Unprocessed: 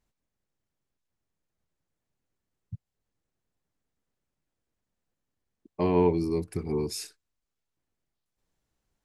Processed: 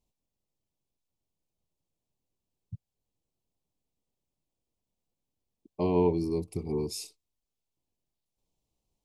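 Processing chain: Butterworth band-stop 1.6 kHz, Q 1.1; trim -2 dB

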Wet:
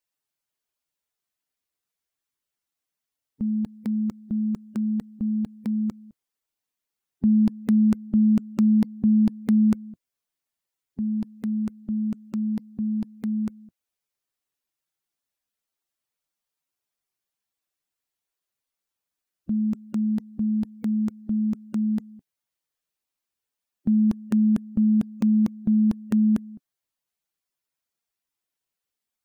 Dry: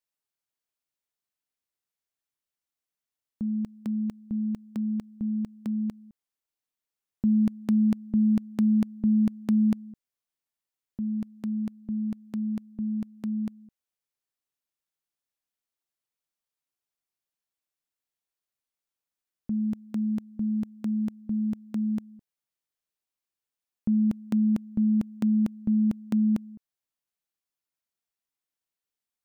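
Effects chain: coarse spectral quantiser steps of 15 dB; trim +4 dB

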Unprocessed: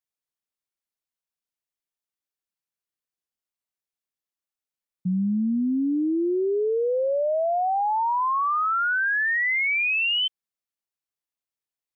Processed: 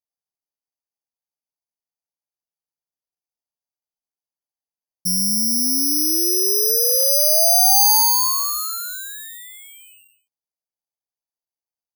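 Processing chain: four-pole ladder low-pass 1 kHz, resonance 45%; careless resampling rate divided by 8×, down filtered, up zero stuff; trim +3.5 dB

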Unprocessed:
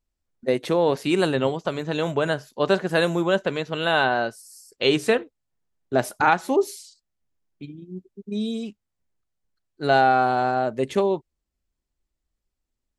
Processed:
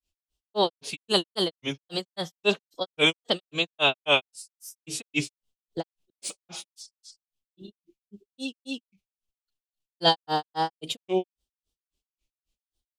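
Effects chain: resonant high shelf 2.3 kHz +7 dB, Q 3; formant-preserving pitch shift +1.5 st; granulator 161 ms, grains 3.7 per s, spray 250 ms, pitch spread up and down by 3 st

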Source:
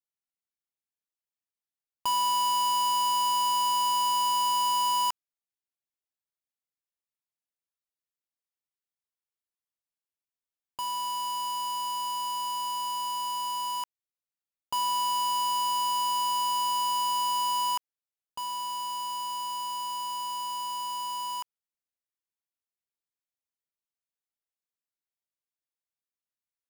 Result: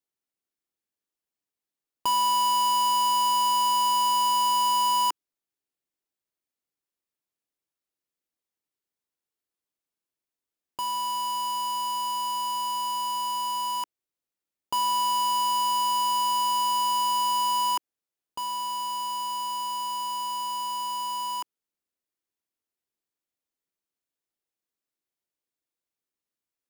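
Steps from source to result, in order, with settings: peaking EQ 330 Hz +8 dB 1.3 oct; trim +2 dB

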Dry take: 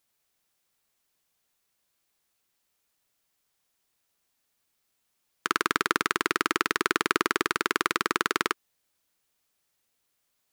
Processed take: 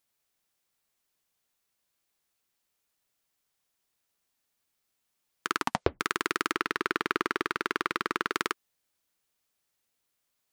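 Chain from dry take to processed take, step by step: 5.56 s: tape stop 0.44 s; 6.53–8.32 s: decimation joined by straight lines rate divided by 3×; trim -3.5 dB

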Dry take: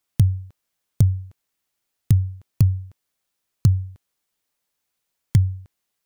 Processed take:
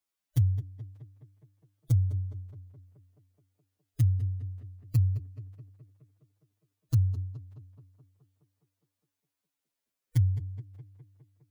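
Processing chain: tape echo 110 ms, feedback 75%, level -8 dB, low-pass 2.2 kHz; time stretch by phase-locked vocoder 1.9×; trim -9 dB

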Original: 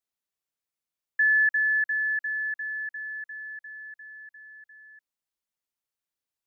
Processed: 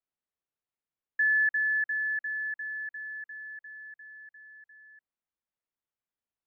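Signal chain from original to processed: distance through air 420 m

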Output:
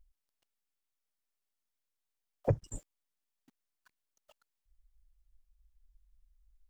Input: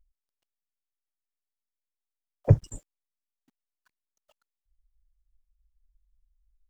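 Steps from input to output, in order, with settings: compression 6:1, threshold -29 dBFS, peak gain reduction 17 dB; trim +2.5 dB

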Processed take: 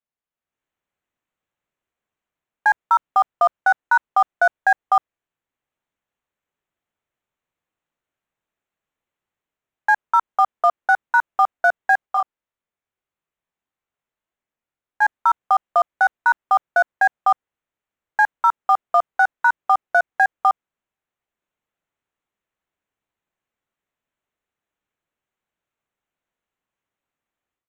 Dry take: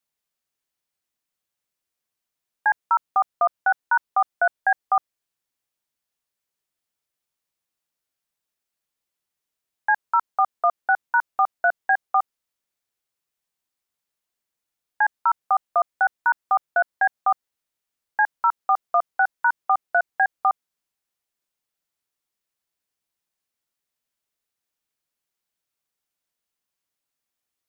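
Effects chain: local Wiener filter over 9 samples; level rider gain up to 11 dB; 12.06–15.02 s: chorus 1.7 Hz, delay 20 ms, depth 3.8 ms; trim -5 dB

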